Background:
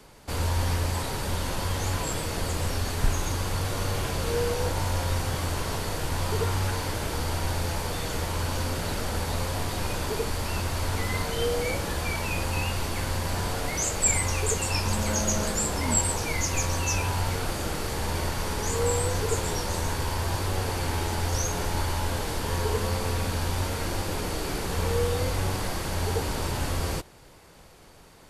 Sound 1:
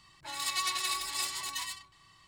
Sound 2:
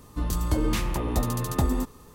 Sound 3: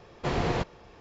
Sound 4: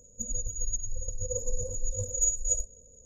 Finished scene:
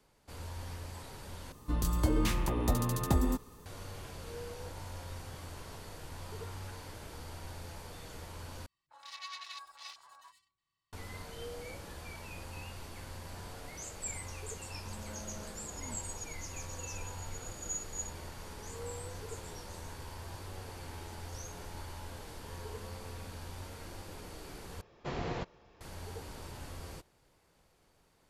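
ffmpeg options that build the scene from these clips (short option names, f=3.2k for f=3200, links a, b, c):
-filter_complex "[0:a]volume=-17dB[a];[1:a]afwtdn=0.0141[b];[4:a]equalizer=f=7.3k:w=1.5:g=5.5[c];[a]asplit=4[d][e][f][g];[d]atrim=end=1.524[h];[2:a]atrim=end=2.14,asetpts=PTS-STARTPTS,volume=-4dB[i];[e]atrim=start=3.656:end=8.664[j];[b]atrim=end=2.27,asetpts=PTS-STARTPTS,volume=-11.5dB[k];[f]atrim=start=10.926:end=24.814[l];[3:a]atrim=end=1,asetpts=PTS-STARTPTS,volume=-9.5dB[m];[g]atrim=start=25.806[n];[c]atrim=end=3.05,asetpts=PTS-STARTPTS,volume=-17.5dB,afade=t=in:d=0.004:c=hsin,afade=t=out:st=3.046:d=0.004:c=hsin,adelay=15480[o];[h][i]acrossfade=d=0.004:c1=hsin:c2=hsin[p];[p][j]acrossfade=d=0.004:c1=hsin:c2=hsin[q];[q][k]acrossfade=d=0.004:c1=hsin:c2=hsin[r];[r][l]acrossfade=d=0.004:c1=hsin:c2=hsin[s];[s][m]acrossfade=d=0.004:c1=hsin:c2=hsin[t];[t][n]acrossfade=d=0.004:c1=hsin:c2=hsin[u];[u][o]amix=inputs=2:normalize=0"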